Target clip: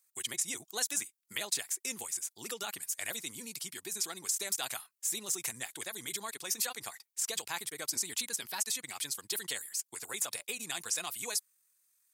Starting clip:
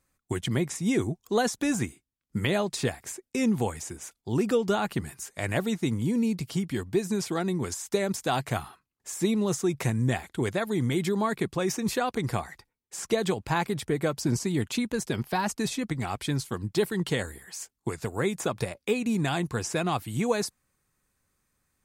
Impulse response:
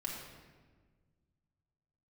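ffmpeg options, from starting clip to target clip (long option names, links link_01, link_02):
-af "aderivative,atempo=1.8,volume=5.5dB"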